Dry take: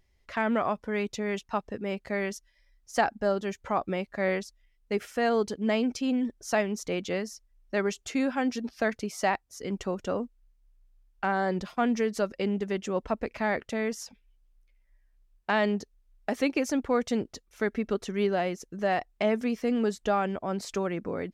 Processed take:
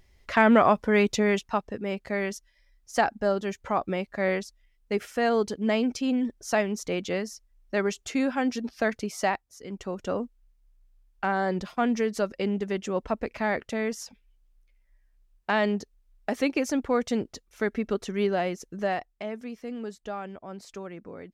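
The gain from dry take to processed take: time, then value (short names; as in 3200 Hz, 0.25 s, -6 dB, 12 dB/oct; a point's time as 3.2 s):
1.22 s +8.5 dB
1.65 s +1.5 dB
9.22 s +1.5 dB
9.64 s -6 dB
10.11 s +1 dB
18.81 s +1 dB
19.25 s -9 dB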